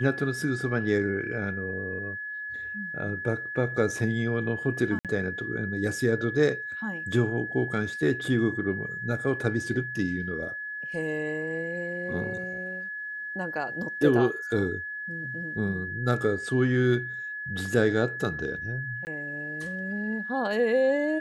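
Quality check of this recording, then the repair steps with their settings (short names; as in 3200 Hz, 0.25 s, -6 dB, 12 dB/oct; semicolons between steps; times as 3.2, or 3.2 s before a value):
tone 1700 Hz -33 dBFS
4.99–5.05 gap 57 ms
19.05–19.07 gap 19 ms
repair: notch 1700 Hz, Q 30; interpolate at 4.99, 57 ms; interpolate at 19.05, 19 ms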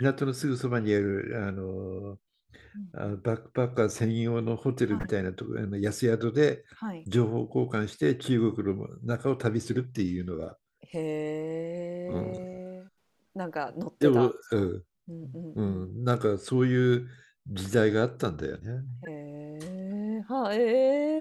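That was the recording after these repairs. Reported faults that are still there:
none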